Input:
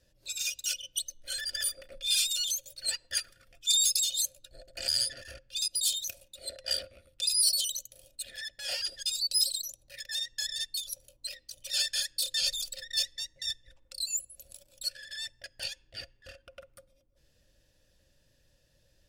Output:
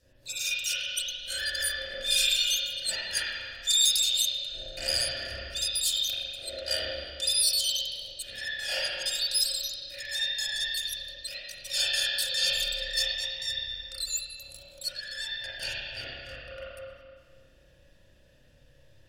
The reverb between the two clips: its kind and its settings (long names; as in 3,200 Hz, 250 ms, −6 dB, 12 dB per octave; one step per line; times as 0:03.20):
spring reverb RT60 1.8 s, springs 30/41 ms, chirp 80 ms, DRR −9 dB